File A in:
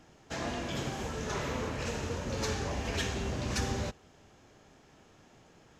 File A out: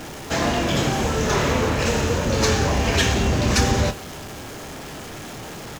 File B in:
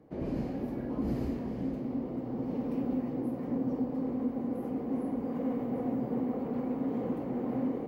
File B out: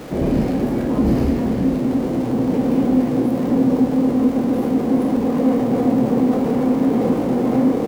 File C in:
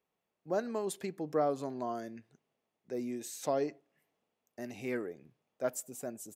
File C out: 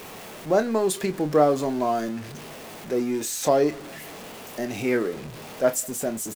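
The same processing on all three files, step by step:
zero-crossing step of -45 dBFS; doubler 27 ms -10.5 dB; normalise peaks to -6 dBFS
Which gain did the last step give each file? +13.0, +14.5, +11.5 dB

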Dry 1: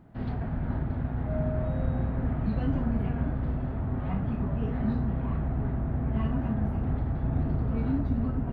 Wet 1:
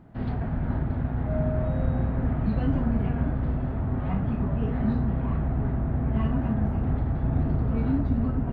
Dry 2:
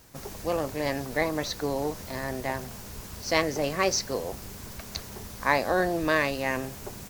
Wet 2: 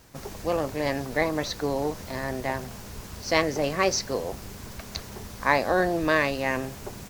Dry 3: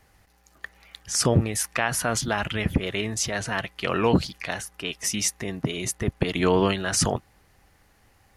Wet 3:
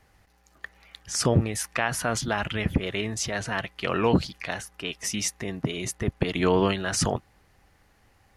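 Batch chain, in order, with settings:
high shelf 7600 Hz -6 dB; match loudness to -27 LUFS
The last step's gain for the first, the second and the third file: +3.0, +2.0, -1.0 dB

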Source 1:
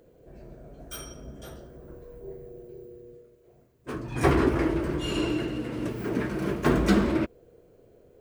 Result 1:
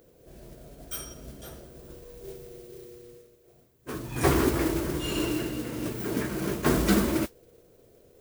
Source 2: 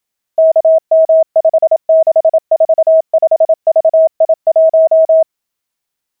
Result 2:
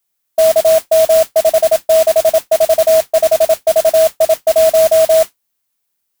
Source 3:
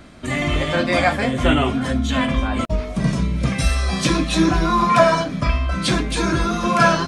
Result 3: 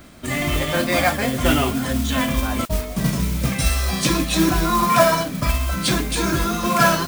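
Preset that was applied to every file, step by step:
high shelf 8900 Hz +11.5 dB; modulation noise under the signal 13 dB; gain -1.5 dB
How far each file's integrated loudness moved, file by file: -1.0, -1.0, -0.5 LU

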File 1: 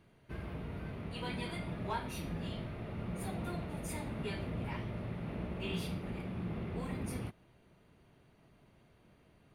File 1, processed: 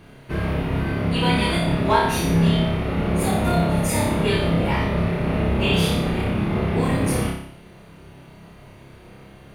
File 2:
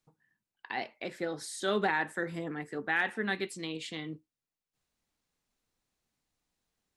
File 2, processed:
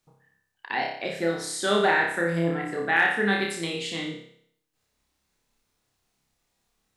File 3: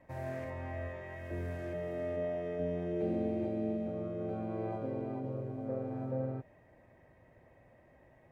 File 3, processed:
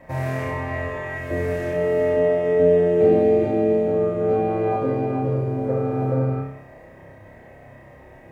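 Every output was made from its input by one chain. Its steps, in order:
notches 60/120/180/240/300 Hz; flutter echo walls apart 5.1 m, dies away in 0.65 s; normalise peaks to -6 dBFS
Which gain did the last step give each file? +17.0, +5.5, +14.0 dB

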